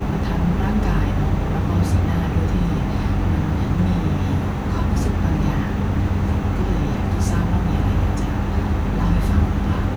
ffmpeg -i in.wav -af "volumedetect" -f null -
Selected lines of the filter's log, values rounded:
mean_volume: -18.8 dB
max_volume: -5.6 dB